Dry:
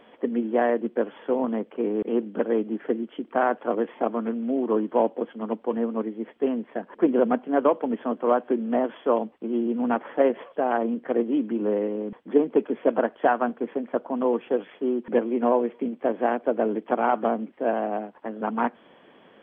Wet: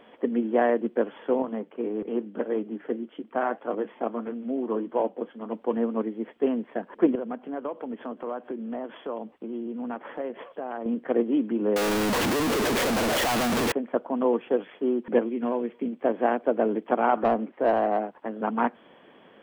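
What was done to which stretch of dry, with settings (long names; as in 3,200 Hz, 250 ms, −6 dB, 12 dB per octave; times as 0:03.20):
0:01.42–0:05.55: flanger 1.7 Hz, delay 5.8 ms, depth 3.3 ms, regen −67%
0:07.15–0:10.86: downward compressor 2.5 to 1, threshold −34 dBFS
0:11.76–0:13.72: sign of each sample alone
0:15.28–0:16.01: parametric band 710 Hz −13 dB → −2 dB 2 octaves
0:17.17–0:18.11: mid-hump overdrive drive 15 dB, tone 1,100 Hz, clips at −11 dBFS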